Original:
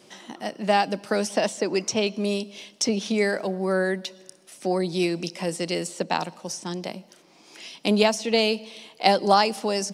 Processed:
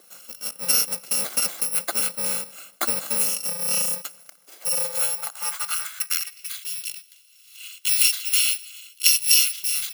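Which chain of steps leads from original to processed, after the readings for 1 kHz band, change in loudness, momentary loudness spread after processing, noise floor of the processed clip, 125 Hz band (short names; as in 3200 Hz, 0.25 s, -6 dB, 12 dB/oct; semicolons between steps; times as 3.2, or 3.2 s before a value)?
-13.0 dB, +3.5 dB, 15 LU, -54 dBFS, -15.5 dB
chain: FFT order left unsorted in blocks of 128 samples; high-pass sweep 340 Hz -> 2900 Hz, 4.45–6.64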